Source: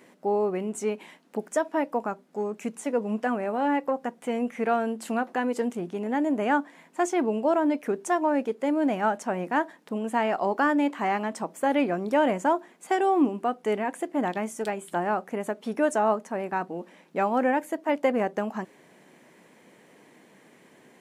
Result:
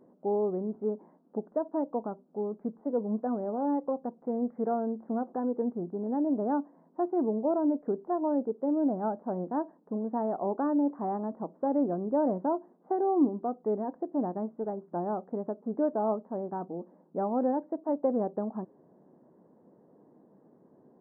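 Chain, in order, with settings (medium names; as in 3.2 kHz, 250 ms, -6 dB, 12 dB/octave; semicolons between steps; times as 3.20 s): Gaussian low-pass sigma 9.8 samples; trim -1.5 dB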